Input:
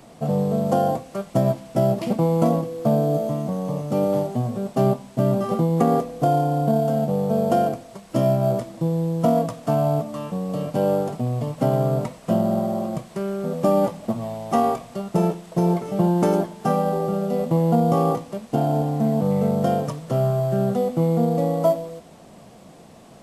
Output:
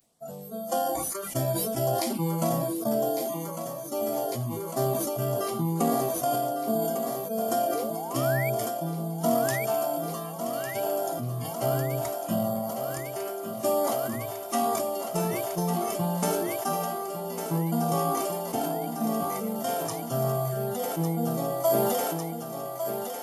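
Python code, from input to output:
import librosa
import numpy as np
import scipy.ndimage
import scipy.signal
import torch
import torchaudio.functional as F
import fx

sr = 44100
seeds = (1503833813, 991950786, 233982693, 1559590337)

y = fx.hum_notches(x, sr, base_hz=50, count=7)
y = fx.noise_reduce_blind(y, sr, reduce_db=21)
y = fx.filter_lfo_notch(y, sr, shape='sine', hz=1.1, low_hz=250.0, high_hz=2800.0, q=2.9)
y = fx.spec_paint(y, sr, seeds[0], shape='rise', start_s=7.75, length_s=0.75, low_hz=430.0, high_hz=2400.0, level_db=-33.0)
y = F.preemphasis(torch.from_numpy(y), 0.8).numpy()
y = fx.echo_thinned(y, sr, ms=1152, feedback_pct=81, hz=210.0, wet_db=-8)
y = fx.sustainer(y, sr, db_per_s=20.0)
y = y * librosa.db_to_amplitude(7.0)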